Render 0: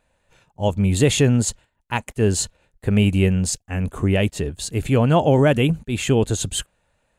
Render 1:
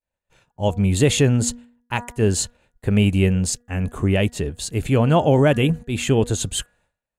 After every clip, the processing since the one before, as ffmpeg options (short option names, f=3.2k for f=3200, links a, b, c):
-af "agate=range=-33dB:threshold=-53dB:ratio=3:detection=peak,bandreject=f=240.1:t=h:w=4,bandreject=f=480.2:t=h:w=4,bandreject=f=720.3:t=h:w=4,bandreject=f=960.4:t=h:w=4,bandreject=f=1.2005k:t=h:w=4,bandreject=f=1.4406k:t=h:w=4,bandreject=f=1.6807k:t=h:w=4,bandreject=f=1.9208k:t=h:w=4"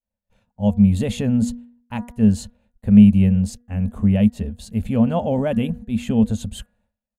-af "firequalizer=gain_entry='entry(100,0);entry(150,-14);entry(210,12);entry(320,-19);entry(510,-4);entry(1300,-12);entry(3700,-11);entry(7500,-16);entry(12000,-9)':delay=0.05:min_phase=1,volume=1dB"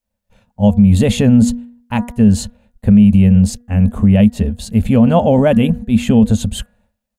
-af "alimiter=level_in=11dB:limit=-1dB:release=50:level=0:latency=1,volume=-1dB"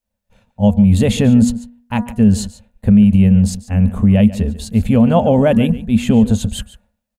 -af "aecho=1:1:143:0.15,volume=-1dB"